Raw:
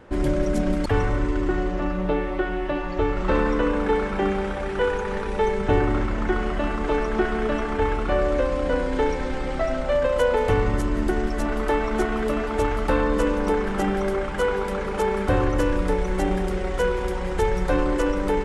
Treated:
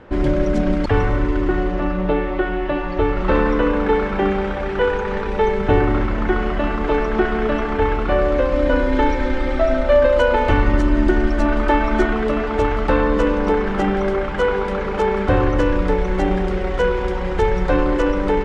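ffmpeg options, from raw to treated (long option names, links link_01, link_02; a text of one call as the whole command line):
ffmpeg -i in.wav -filter_complex "[0:a]asettb=1/sr,asplit=3[link_01][link_02][link_03];[link_01]atrim=end=8.534[link_04];[link_02]atrim=start=8.53:end=12.13,asetpts=PTS-STARTPTS,afade=type=in:duration=0.004:curve=qsin,afade=type=out:start_time=3.596:duration=0.004:curve=qsin,aecho=1:1:3.3:0.65,atrim=end_sample=158760[link_05];[link_03]atrim=start=12.126[link_06];[link_04][link_05]acrossfade=duration=0.004:curve1=hsin:curve2=qsin[link_07];[link_07][link_06]acrossfade=duration=0.004:curve1=qsin:curve2=hsin,lowpass=4400,volume=4.5dB" out.wav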